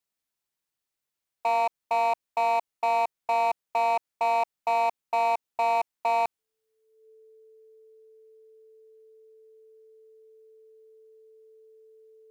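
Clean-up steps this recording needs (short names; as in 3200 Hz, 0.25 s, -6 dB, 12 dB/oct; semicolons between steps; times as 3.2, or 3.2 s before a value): clip repair -21 dBFS; notch 440 Hz, Q 30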